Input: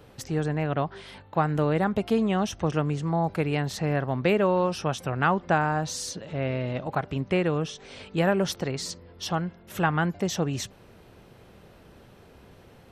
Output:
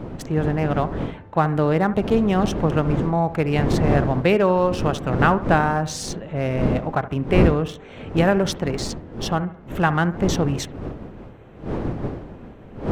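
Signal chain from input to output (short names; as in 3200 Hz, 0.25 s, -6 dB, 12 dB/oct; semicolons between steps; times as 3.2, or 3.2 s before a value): Wiener smoothing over 9 samples; wind noise 320 Hz -32 dBFS; analogue delay 70 ms, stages 1024, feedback 41%, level -15 dB; gain +5 dB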